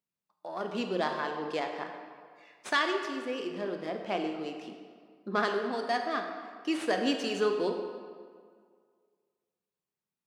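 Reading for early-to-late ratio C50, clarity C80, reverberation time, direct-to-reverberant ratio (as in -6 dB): 5.5 dB, 6.5 dB, 1.9 s, 4.0 dB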